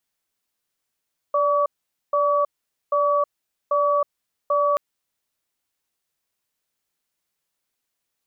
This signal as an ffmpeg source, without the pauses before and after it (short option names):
-f lavfi -i "aevalsrc='0.106*(sin(2*PI*582*t)+sin(2*PI*1140*t))*clip(min(mod(t,0.79),0.32-mod(t,0.79))/0.005,0,1)':d=3.43:s=44100"